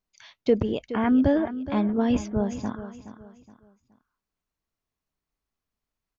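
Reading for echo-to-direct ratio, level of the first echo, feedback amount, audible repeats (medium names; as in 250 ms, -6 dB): -12.5 dB, -13.0 dB, 33%, 3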